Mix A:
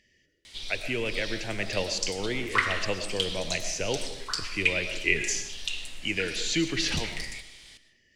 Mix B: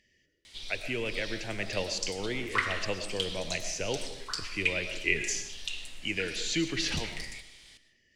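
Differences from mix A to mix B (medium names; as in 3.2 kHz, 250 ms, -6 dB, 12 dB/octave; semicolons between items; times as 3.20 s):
speech -3.0 dB; background -4.0 dB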